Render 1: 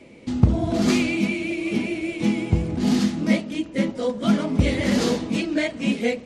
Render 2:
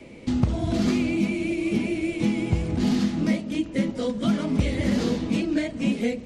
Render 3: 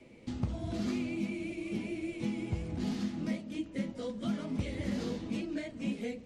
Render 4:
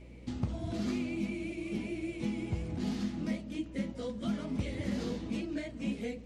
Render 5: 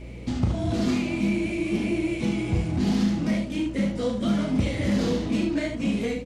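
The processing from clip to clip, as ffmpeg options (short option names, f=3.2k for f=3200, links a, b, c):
-filter_complex "[0:a]lowshelf=f=65:g=9.5,acrossover=split=370|1400|5300[a][b][c][d];[a]acompressor=threshold=-23dB:ratio=4[e];[b]acompressor=threshold=-36dB:ratio=4[f];[c]acompressor=threshold=-40dB:ratio=4[g];[d]acompressor=threshold=-51dB:ratio=4[h];[e][f][g][h]amix=inputs=4:normalize=0,volume=2dB"
-af "flanger=delay=8:depth=2.8:regen=-57:speed=0.9:shape=sinusoidal,volume=-7.5dB"
-af "aeval=exprs='val(0)+0.00316*(sin(2*PI*60*n/s)+sin(2*PI*2*60*n/s)/2+sin(2*PI*3*60*n/s)/3+sin(2*PI*4*60*n/s)/4+sin(2*PI*5*60*n/s)/5)':c=same"
-filter_complex "[0:a]asplit=2[a][b];[b]asoftclip=type=hard:threshold=-38dB,volume=-7.5dB[c];[a][c]amix=inputs=2:normalize=0,aecho=1:1:35|74:0.501|0.501,volume=7.5dB"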